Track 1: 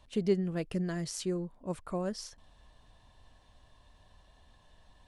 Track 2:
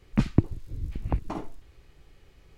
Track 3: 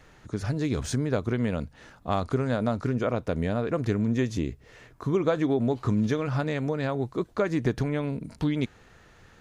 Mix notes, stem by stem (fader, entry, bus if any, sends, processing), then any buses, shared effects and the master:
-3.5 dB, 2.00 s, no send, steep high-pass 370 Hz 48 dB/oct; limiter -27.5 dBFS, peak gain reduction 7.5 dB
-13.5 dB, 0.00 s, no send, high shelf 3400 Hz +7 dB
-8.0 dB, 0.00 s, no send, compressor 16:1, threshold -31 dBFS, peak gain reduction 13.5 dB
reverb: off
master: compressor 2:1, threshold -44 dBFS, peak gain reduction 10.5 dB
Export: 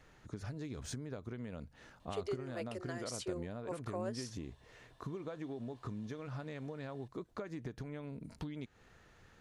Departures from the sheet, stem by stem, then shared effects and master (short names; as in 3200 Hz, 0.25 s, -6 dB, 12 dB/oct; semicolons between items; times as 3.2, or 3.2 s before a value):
stem 2: muted; master: missing compressor 2:1, threshold -44 dBFS, peak gain reduction 10.5 dB